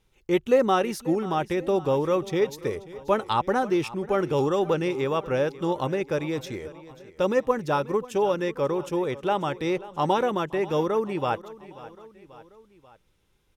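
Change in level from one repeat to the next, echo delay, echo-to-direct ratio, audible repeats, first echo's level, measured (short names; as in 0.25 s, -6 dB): -5.0 dB, 0.537 s, -16.5 dB, 3, -18.0 dB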